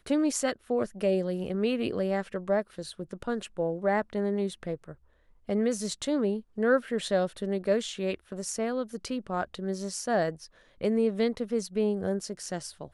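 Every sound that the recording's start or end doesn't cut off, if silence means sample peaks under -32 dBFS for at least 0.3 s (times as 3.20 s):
5.49–10.30 s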